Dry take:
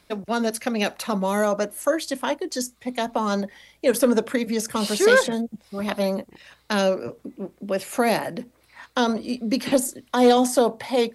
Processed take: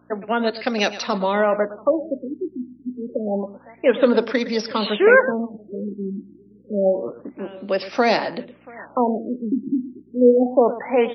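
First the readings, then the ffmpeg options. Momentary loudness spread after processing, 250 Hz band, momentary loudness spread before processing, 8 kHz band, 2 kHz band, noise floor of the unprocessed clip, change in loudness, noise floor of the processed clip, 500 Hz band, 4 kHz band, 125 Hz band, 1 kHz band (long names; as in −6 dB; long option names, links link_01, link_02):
16 LU, +1.0 dB, 12 LU, below −10 dB, +3.0 dB, −60 dBFS, +2.0 dB, −51 dBFS, +3.0 dB, −1.0 dB, can't be measured, +1.0 dB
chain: -filter_complex "[0:a]asplit=2[link_01][link_02];[link_02]aecho=0:1:113:0.188[link_03];[link_01][link_03]amix=inputs=2:normalize=0,aeval=exprs='val(0)+0.00398*(sin(2*PI*60*n/s)+sin(2*PI*2*60*n/s)/2+sin(2*PI*3*60*n/s)/3+sin(2*PI*4*60*n/s)/4+sin(2*PI*5*60*n/s)/5)':channel_layout=same,highpass=230,highshelf=frequency=5400:gain=6,asplit=2[link_04][link_05];[link_05]aecho=0:1:683|1366:0.0708|0.0219[link_06];[link_04][link_06]amix=inputs=2:normalize=0,afftfilt=real='re*lt(b*sr/1024,370*pow(6100/370,0.5+0.5*sin(2*PI*0.28*pts/sr)))':imag='im*lt(b*sr/1024,370*pow(6100/370,0.5+0.5*sin(2*PI*0.28*pts/sr)))':win_size=1024:overlap=0.75,volume=3.5dB"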